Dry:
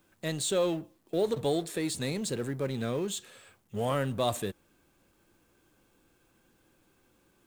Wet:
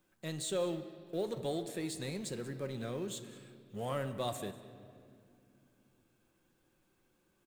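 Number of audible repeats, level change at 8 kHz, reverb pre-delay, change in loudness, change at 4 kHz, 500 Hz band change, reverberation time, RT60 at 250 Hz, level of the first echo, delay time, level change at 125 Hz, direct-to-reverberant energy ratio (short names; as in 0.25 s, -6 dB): 1, -7.5 dB, 5 ms, -7.0 dB, -7.5 dB, -7.5 dB, 2.5 s, 4.0 s, -21.0 dB, 0.195 s, -7.0 dB, 8.0 dB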